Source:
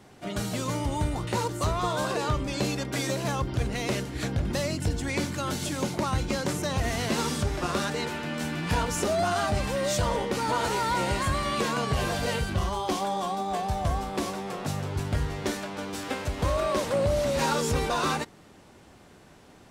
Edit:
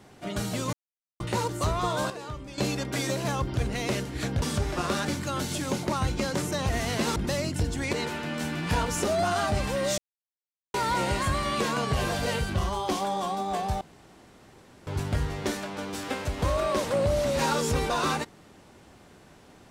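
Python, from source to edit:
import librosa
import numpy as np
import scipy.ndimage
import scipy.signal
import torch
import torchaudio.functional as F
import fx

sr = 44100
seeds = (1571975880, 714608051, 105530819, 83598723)

y = fx.edit(x, sr, fx.silence(start_s=0.73, length_s=0.47),
    fx.clip_gain(start_s=2.1, length_s=0.48, db=-10.5),
    fx.swap(start_s=4.42, length_s=0.77, other_s=7.27, other_length_s=0.66),
    fx.silence(start_s=9.98, length_s=0.76),
    fx.room_tone_fill(start_s=13.81, length_s=1.06), tone=tone)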